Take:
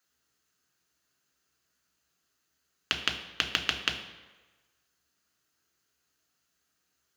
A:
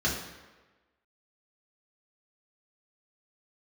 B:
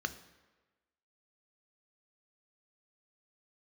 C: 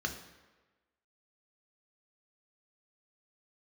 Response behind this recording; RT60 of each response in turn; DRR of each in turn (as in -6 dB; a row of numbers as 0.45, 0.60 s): C; 1.3, 1.3, 1.3 s; -5.0, 9.5, 3.5 dB